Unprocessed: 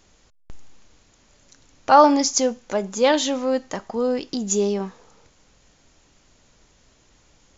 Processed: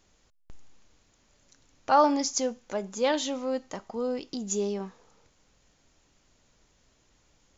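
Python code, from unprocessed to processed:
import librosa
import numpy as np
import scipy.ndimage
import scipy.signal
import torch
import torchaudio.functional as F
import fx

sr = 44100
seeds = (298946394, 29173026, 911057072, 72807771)

y = fx.notch(x, sr, hz=1700.0, q=9.2, at=(3.21, 4.47))
y = F.gain(torch.from_numpy(y), -8.0).numpy()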